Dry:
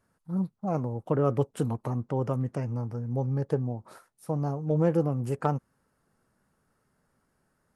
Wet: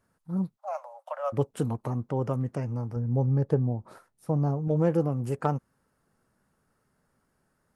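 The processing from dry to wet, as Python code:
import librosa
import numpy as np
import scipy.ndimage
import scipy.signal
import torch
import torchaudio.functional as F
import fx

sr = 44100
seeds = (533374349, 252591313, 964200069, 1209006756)

y = fx.cheby1_highpass(x, sr, hz=550.0, order=8, at=(0.56, 1.32), fade=0.02)
y = fx.tilt_eq(y, sr, slope=-1.5, at=(2.96, 4.68))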